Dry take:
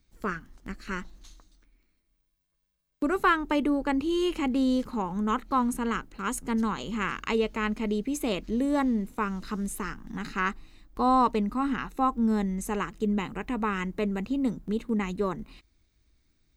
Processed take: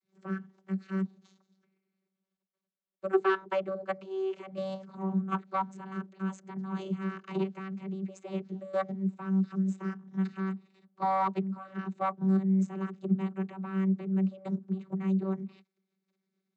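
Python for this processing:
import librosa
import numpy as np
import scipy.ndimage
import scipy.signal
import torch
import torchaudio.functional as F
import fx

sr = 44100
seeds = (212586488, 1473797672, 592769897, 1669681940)

y = fx.diode_clip(x, sr, knee_db=-23.5)
y = fx.level_steps(y, sr, step_db=13)
y = fx.vocoder(y, sr, bands=32, carrier='saw', carrier_hz=191.0)
y = y * librosa.db_to_amplitude(3.5)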